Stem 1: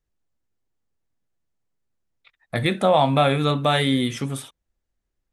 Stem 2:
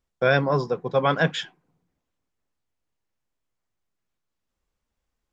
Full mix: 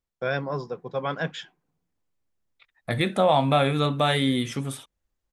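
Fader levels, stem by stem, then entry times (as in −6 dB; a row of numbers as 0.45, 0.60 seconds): −2.5, −7.5 decibels; 0.35, 0.00 seconds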